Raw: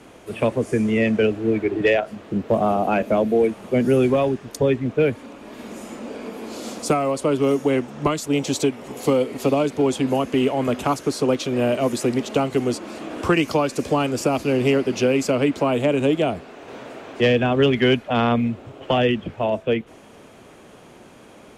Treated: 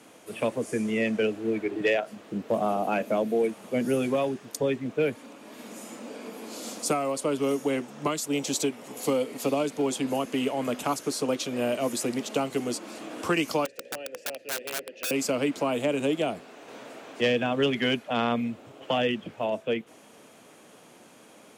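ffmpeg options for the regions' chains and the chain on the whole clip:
-filter_complex "[0:a]asettb=1/sr,asplit=3[a][b][c];[a]atrim=end=13.654[d];[b]atrim=start=13.65:end=15.11,asetpts=PTS-STARTPTS,afade=t=in:d=0.004:c=qsin,afade=t=out:st=1.456:d=0.004:c=qsin,asplit=3[e][f][g];[e]bandpass=f=530:t=q:w=8,volume=0dB[h];[f]bandpass=f=1.84k:t=q:w=8,volume=-6dB[i];[g]bandpass=f=2.48k:t=q:w=8,volume=-9dB[j];[h][i][j]amix=inputs=3:normalize=0,aeval=exprs='(mod(13.3*val(0)+1,2)-1)/13.3':c=same,bandreject=f=60:t=h:w=6,bandreject=f=120:t=h:w=6,bandreject=f=180:t=h:w=6,bandreject=f=240:t=h:w=6,bandreject=f=300:t=h:w=6,bandreject=f=360:t=h:w=6,bandreject=f=420:t=h:w=6,bandreject=f=480:t=h:w=6[k];[c]atrim=start=15.106[l];[d][k]acrossfade=d=0.004:c1=hsin:c2=qsin[m];[m][l]acrossfade=d=0.004:c1=qsin:c2=hsin,highpass=170,highshelf=f=5.1k:g=9.5,bandreject=f=380:w=12,volume=-6.5dB"

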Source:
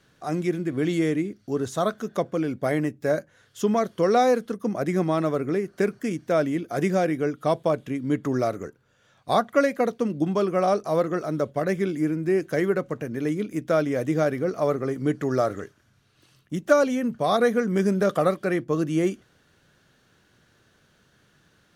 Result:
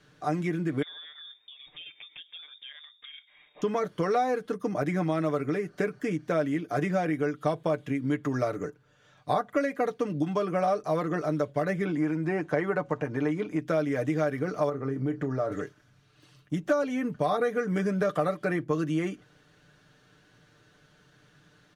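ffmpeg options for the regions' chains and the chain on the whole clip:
-filter_complex "[0:a]asettb=1/sr,asplit=3[a][b][c];[a]atrim=end=0.824[d];[b]atrim=start=0.82:end=3.62,asetpts=PTS-STARTPTS,afade=t=in:d=0.004:c=qsin,afade=t=out:st=2.796:d=0.004:c=qsin,equalizer=f=230:w=4.8:g=-6,acompressor=threshold=-37dB:ratio=8:attack=3.2:release=140:knee=1:detection=peak,lowpass=f=3.2k:t=q:w=0.5098,lowpass=f=3.2k:t=q:w=0.6013,lowpass=f=3.2k:t=q:w=0.9,lowpass=f=3.2k:t=q:w=2.563,afreqshift=-3800[e];[c]atrim=start=3.616[f];[d][e]acrossfade=d=0.004:c1=hsin:c2=qsin[g];[g][f]acrossfade=d=0.004:c1=qsin:c2=hsin,asettb=1/sr,asplit=3[h][i][j];[h]atrim=end=11.854[k];[i]atrim=start=11.85:end=13.6,asetpts=PTS-STARTPTS,afade=t=in:d=0.004:c=qsin,afade=t=out:st=1.746:d=0.004:c=qsin,lowpass=10k,equalizer=f=880:t=o:w=0.75:g=11,acrossover=split=4000[l][m];[m]acompressor=threshold=-56dB:ratio=4:attack=1:release=60[n];[l][n]amix=inputs=2:normalize=0[o];[j]atrim=start=13.596[p];[k][o]acrossfade=d=0.004:c1=hsin:c2=qsin[q];[q][p]acrossfade=d=0.004:c1=qsin:c2=hsin,asettb=1/sr,asplit=3[r][s][t];[r]atrim=end=14.694[u];[s]atrim=start=14.69:end=15.52,asetpts=PTS-STARTPTS,afade=t=in:d=0.004:c=qsin,afade=t=out:st=0.826:d=0.004:c=qsin,highshelf=f=2.2k:g=-12,acompressor=threshold=-27dB:ratio=2.5:attack=3.2:release=140:knee=1:detection=peak,asplit=2[v][w];[w]adelay=30,volume=-12dB[x];[v][x]amix=inputs=2:normalize=0,atrim=end_sample=36603[y];[t]atrim=start=15.516[z];[u][y]acrossfade=d=0.004:c1=hsin:c2=qsin[aa];[aa][z]acrossfade=d=0.004:c1=qsin:c2=hsin,highshelf=f=9.8k:g=-11,aecho=1:1:6.7:0.62,acrossover=split=950|2800|7200[ab][ac][ad][ae];[ab]acompressor=threshold=-26dB:ratio=4[af];[ac]acompressor=threshold=-33dB:ratio=4[ag];[ad]acompressor=threshold=-55dB:ratio=4[ah];[ae]acompressor=threshold=-59dB:ratio=4[ai];[af][ag][ah][ai]amix=inputs=4:normalize=0"

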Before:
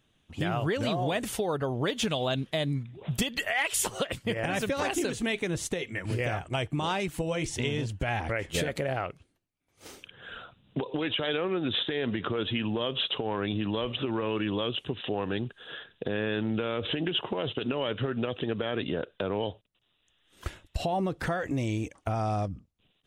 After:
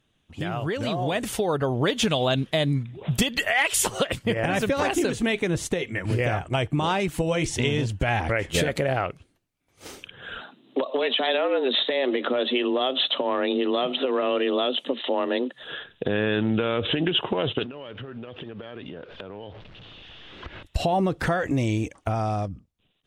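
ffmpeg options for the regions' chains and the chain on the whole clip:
-filter_complex "[0:a]asettb=1/sr,asplit=3[a][b][c];[a]atrim=end=4.194[d];[b]atrim=start=4.19:end=7.08,asetpts=PTS-STARTPTS,afade=t=in:d=0.004:c=qsin,afade=t=out:st=2.886:d=0.004:c=qsin,lowpass=f=2k:p=1,aemphasis=mode=production:type=50kf[e];[c]atrim=start=7.076[f];[d][e]acrossfade=d=0.004:c1=hsin:c2=qsin[g];[g][f]acrossfade=d=0.004:c1=qsin:c2=hsin,asettb=1/sr,asplit=3[h][i][j];[h]atrim=end=10.414[k];[i]atrim=start=10.41:end=15.63,asetpts=PTS-STARTPTS,afade=t=in:d=0.004:c=qsin,afade=t=out:st=5.216:d=0.004:c=qsin,bandreject=f=1.4k:w=12,afreqshift=130[l];[j]atrim=start=15.626[m];[k][l]acrossfade=d=0.004:c1=hsin:c2=qsin[n];[n][m]acrossfade=d=0.004:c1=qsin:c2=hsin,asettb=1/sr,asplit=3[o][p][q];[o]atrim=end=17.634[r];[p]atrim=start=17.63:end=20.63,asetpts=PTS-STARTPTS,afade=t=in:d=0.004:c=qsin,afade=t=out:st=2.996:d=0.004:c=qsin,aeval=exprs='val(0)+0.5*0.00631*sgn(val(0))':c=same,lowpass=f=3.6k:w=0.5412,lowpass=f=3.6k:w=1.3066,acompressor=threshold=-40dB:ratio=10:attack=3.2:release=140:knee=1:detection=peak[s];[q]atrim=start=20.626[t];[r][s]acrossfade=d=0.004:c1=hsin:c2=qsin[u];[u][t]acrossfade=d=0.004:c1=qsin:c2=hsin,lowpass=f=3.2k:p=1,aemphasis=mode=production:type=cd,dynaudnorm=f=260:g=9:m=6.5dB"

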